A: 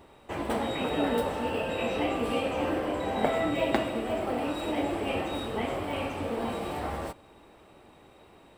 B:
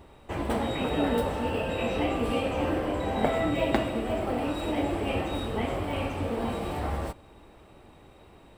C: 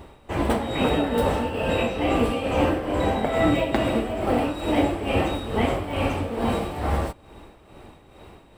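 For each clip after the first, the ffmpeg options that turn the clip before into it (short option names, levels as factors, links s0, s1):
-af "lowshelf=f=120:g=11"
-af "tremolo=f=2.3:d=0.61,volume=2.51"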